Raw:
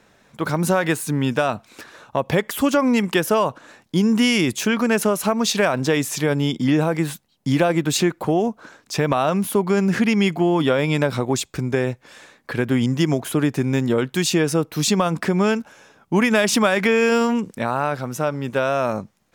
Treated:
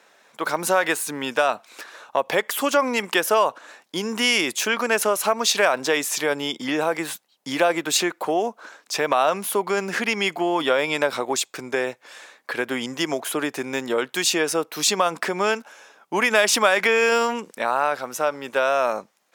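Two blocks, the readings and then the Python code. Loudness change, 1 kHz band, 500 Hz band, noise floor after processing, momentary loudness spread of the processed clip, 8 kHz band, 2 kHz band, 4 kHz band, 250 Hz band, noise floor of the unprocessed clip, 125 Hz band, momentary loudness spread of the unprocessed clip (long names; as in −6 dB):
−2.0 dB, +1.5 dB, −1.5 dB, −63 dBFS, 10 LU, +2.0 dB, +2.0 dB, +2.0 dB, −10.0 dB, −61 dBFS, −18.0 dB, 8 LU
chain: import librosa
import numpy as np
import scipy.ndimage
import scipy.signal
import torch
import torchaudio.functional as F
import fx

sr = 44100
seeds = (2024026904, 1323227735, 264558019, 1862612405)

y = scipy.signal.sosfilt(scipy.signal.butter(2, 510.0, 'highpass', fs=sr, output='sos'), x)
y = F.gain(torch.from_numpy(y), 2.0).numpy()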